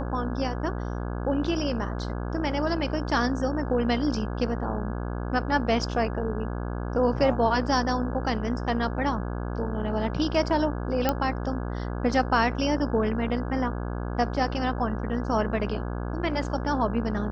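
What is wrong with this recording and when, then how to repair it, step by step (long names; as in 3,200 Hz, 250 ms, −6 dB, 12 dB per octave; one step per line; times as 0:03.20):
mains buzz 60 Hz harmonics 28 −31 dBFS
0:11.09: click −9 dBFS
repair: click removal
hum removal 60 Hz, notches 28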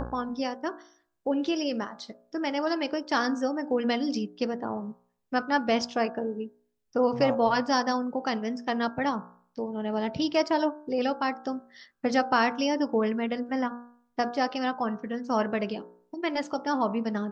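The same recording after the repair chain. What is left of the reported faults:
none of them is left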